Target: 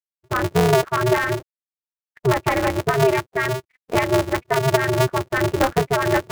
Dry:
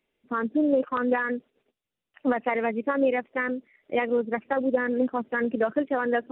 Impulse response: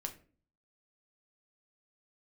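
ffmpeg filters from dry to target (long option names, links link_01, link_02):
-af "lowpass=2600,afftfilt=real='re*gte(hypot(re,im),0.00631)':imag='im*gte(hypot(re,im),0.00631)':win_size=1024:overlap=0.75,areverse,acompressor=mode=upward:threshold=-37dB:ratio=2.5,areverse,aeval=exprs='val(0)*sgn(sin(2*PI*130*n/s))':channel_layout=same,volume=6dB"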